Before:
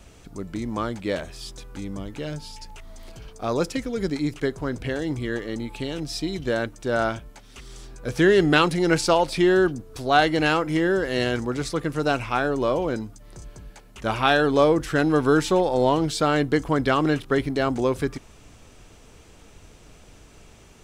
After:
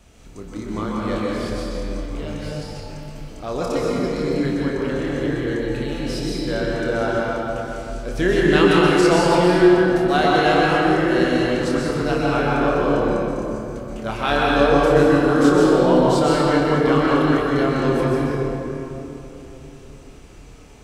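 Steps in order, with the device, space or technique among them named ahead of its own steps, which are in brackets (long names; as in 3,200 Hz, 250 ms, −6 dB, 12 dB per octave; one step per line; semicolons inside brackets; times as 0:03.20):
tunnel (flutter between parallel walls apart 4.8 metres, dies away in 0.25 s; convolution reverb RT60 3.4 s, pre-delay 118 ms, DRR −5 dB)
level −3.5 dB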